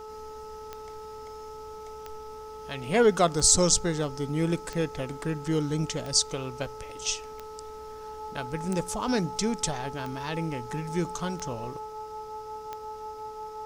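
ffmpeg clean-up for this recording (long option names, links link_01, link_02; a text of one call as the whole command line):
ffmpeg -i in.wav -af "adeclick=threshold=4,bandreject=frequency=432.8:width_type=h:width=4,bandreject=frequency=865.6:width_type=h:width=4,bandreject=frequency=1298.4:width_type=h:width=4,bandreject=frequency=860:width=30" out.wav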